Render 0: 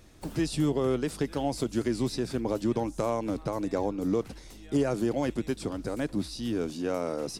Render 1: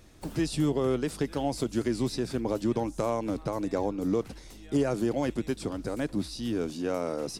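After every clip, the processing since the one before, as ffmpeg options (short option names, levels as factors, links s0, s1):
-af anull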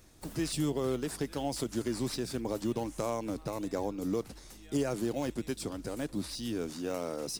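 -filter_complex "[0:a]highshelf=f=4200:g=11,asplit=2[s0][s1];[s1]acrusher=samples=8:mix=1:aa=0.000001:lfo=1:lforange=12.8:lforate=1.2,volume=0.422[s2];[s0][s2]amix=inputs=2:normalize=0,volume=0.398"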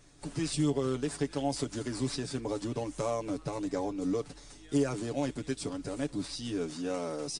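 -af "aecho=1:1:7:0.66,volume=0.891" -ar 22050 -c:a wmav2 -b:a 64k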